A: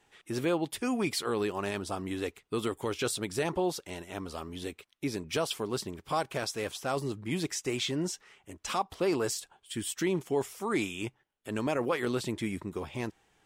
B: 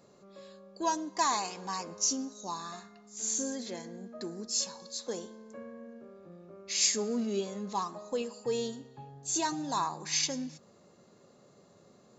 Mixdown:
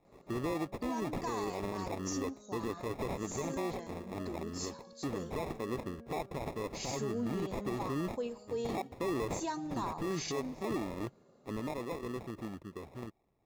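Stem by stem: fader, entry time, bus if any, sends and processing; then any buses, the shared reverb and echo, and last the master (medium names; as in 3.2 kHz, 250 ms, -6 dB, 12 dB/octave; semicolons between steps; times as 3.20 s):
11.44 s -1 dB -> 11.75 s -8 dB, 0.00 s, no send, sample-and-hold 29×
-3.5 dB, 0.05 s, no send, none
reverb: none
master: treble shelf 2.4 kHz -9.5 dB; peak limiter -27.5 dBFS, peak gain reduction 9 dB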